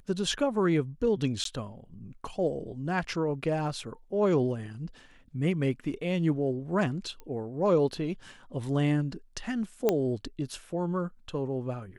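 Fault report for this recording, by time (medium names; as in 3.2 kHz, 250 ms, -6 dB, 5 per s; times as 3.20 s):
1.44–1.45 s: dropout 13 ms
7.20 s: pop -29 dBFS
9.89 s: pop -11 dBFS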